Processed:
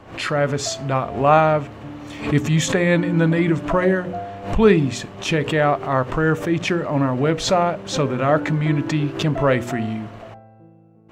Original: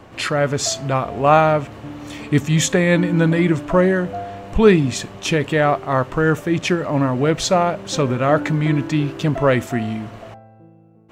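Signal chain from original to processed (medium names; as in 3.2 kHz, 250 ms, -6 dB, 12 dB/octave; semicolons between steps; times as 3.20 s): treble shelf 5.5 kHz -7 dB; hum notches 60/120/180/240/300/360/420/480/540 Hz; swell ahead of each attack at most 120 dB/s; trim -1 dB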